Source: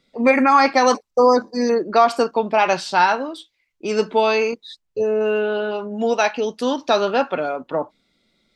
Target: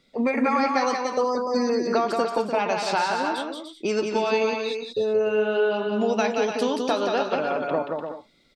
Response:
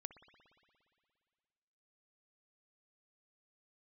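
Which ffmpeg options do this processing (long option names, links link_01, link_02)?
-filter_complex "[0:a]acompressor=threshold=-23dB:ratio=6,asplit=2[link_01][link_02];[link_02]aecho=0:1:178|296|371|387:0.631|0.398|0.15|0.133[link_03];[link_01][link_03]amix=inputs=2:normalize=0,volume=1.5dB"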